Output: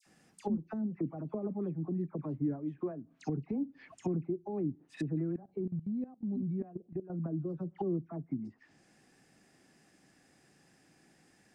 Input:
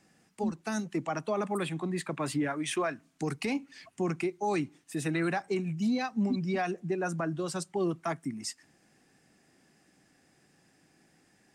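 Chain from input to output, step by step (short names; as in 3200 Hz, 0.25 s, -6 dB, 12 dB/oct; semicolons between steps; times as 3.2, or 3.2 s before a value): dispersion lows, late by 63 ms, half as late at 1600 Hz; treble ducked by the level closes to 320 Hz, closed at -31 dBFS; 5.24–7.1 level quantiser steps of 17 dB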